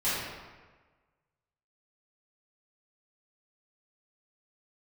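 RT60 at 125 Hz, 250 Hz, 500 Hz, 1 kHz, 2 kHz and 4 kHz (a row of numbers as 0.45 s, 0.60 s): 1.4 s, 1.3 s, 1.4 s, 1.3 s, 1.2 s, 0.90 s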